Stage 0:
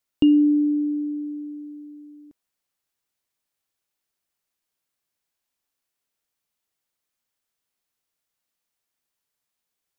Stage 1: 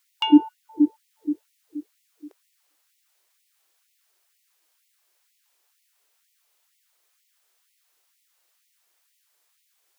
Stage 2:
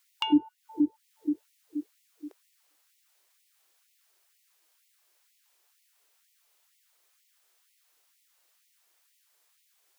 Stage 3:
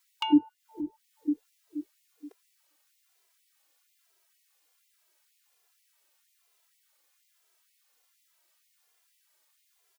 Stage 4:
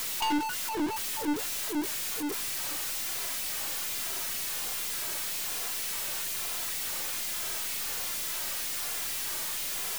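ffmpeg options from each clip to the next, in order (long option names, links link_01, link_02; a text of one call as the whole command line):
ffmpeg -i in.wav -af "acontrast=87,bandreject=frequency=49.59:width_type=h:width=4,bandreject=frequency=99.18:width_type=h:width=4,bandreject=frequency=148.77:width_type=h:width=4,bandreject=frequency=198.36:width_type=h:width=4,bandreject=frequency=247.95:width_type=h:width=4,bandreject=frequency=297.54:width_type=h:width=4,afftfilt=real='re*gte(b*sr/1024,290*pow(1900/290,0.5+0.5*sin(2*PI*2.1*pts/sr)))':imag='im*gte(b*sr/1024,290*pow(1900/290,0.5+0.5*sin(2*PI*2.1*pts/sr)))':win_size=1024:overlap=0.75,volume=6dB" out.wav
ffmpeg -i in.wav -filter_complex "[0:a]acrossover=split=220[link_01][link_02];[link_02]acompressor=threshold=-27dB:ratio=8[link_03];[link_01][link_03]amix=inputs=2:normalize=0" out.wav
ffmpeg -i in.wav -filter_complex "[0:a]asplit=2[link_01][link_02];[link_02]adelay=2.6,afreqshift=-1.2[link_03];[link_01][link_03]amix=inputs=2:normalize=1,volume=1.5dB" out.wav
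ffmpeg -i in.wav -af "aeval=exprs='val(0)+0.5*0.0266*sgn(val(0))':channel_layout=same,aeval=exprs='(tanh(31.6*val(0)+0.3)-tanh(0.3))/31.6':channel_layout=same,volume=5dB" out.wav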